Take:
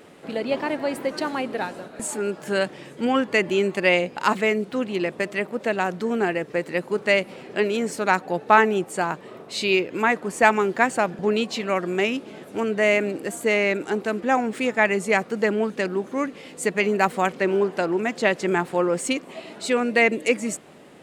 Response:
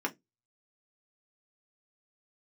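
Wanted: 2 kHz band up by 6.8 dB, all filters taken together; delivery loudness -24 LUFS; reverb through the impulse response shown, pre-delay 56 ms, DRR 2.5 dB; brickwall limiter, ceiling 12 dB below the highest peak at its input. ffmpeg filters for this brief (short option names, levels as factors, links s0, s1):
-filter_complex "[0:a]equalizer=f=2000:t=o:g=8,alimiter=limit=0.335:level=0:latency=1,asplit=2[s0][s1];[1:a]atrim=start_sample=2205,adelay=56[s2];[s1][s2]afir=irnorm=-1:irlink=0,volume=0.376[s3];[s0][s3]amix=inputs=2:normalize=0,volume=0.708"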